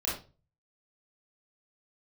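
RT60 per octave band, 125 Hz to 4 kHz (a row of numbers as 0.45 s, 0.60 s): 0.65 s, 0.40 s, 0.35 s, 0.30 s, 0.25 s, 0.30 s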